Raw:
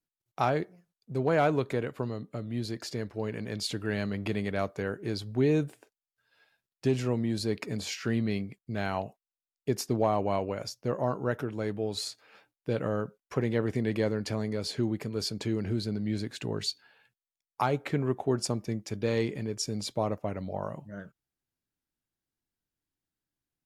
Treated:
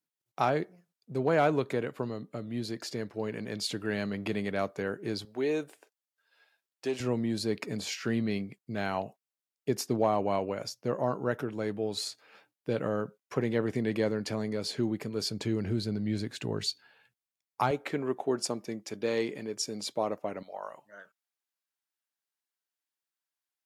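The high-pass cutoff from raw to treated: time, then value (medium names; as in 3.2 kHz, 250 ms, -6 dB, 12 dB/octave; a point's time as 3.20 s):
140 Hz
from 5.25 s 410 Hz
from 7.00 s 130 Hz
from 15.28 s 62 Hz
from 17.71 s 260 Hz
from 20.43 s 770 Hz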